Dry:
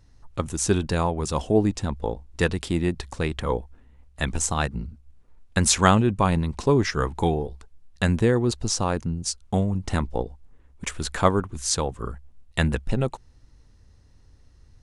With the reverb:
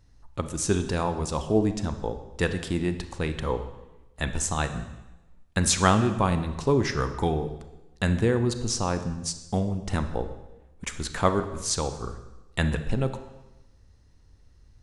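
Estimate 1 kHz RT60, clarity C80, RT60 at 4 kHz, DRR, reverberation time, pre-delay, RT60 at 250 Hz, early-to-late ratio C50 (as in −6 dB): 1.0 s, 12.5 dB, 0.95 s, 9.0 dB, 1.0 s, 30 ms, 1.1 s, 10.5 dB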